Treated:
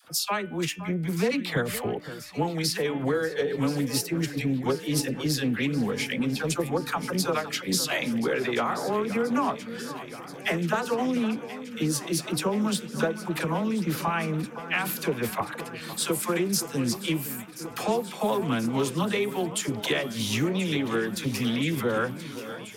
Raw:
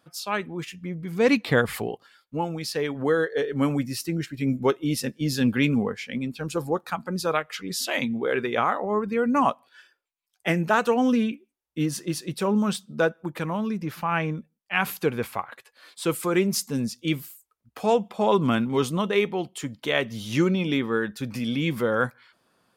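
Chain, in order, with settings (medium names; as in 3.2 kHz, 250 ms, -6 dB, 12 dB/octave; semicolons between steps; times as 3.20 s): treble shelf 4.8 kHz +7 dB; de-hum 297.7 Hz, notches 11; compression 6:1, threshold -31 dBFS, peak gain reduction 15.5 dB; phase dispersion lows, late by 51 ms, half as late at 640 Hz; on a send: echo whose repeats swap between lows and highs 515 ms, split 1.8 kHz, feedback 87%, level -13.5 dB; on the sum: loudspeaker Doppler distortion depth 0.16 ms; trim +7 dB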